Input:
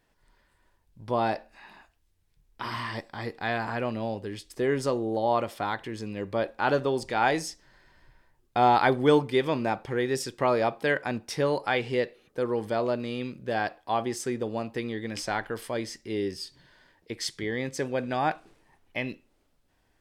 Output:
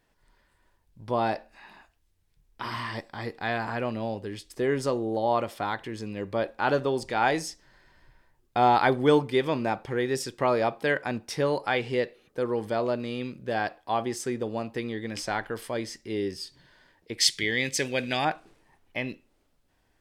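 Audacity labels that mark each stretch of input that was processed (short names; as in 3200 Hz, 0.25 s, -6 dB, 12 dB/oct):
17.180000	18.250000	resonant high shelf 1700 Hz +10 dB, Q 1.5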